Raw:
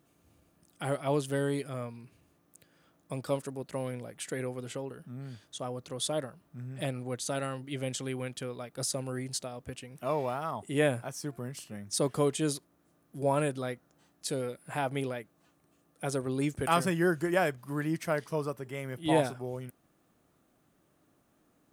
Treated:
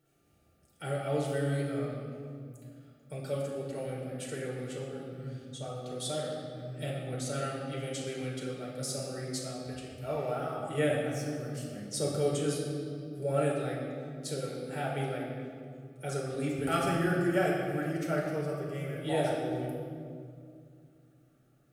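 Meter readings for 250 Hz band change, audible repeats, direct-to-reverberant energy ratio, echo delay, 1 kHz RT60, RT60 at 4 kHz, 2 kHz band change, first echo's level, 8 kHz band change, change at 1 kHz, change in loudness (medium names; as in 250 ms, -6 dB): -0.5 dB, no echo, -4.0 dB, no echo, 2.0 s, 1.5 s, -1.5 dB, no echo, -3.0 dB, -2.5 dB, -1.0 dB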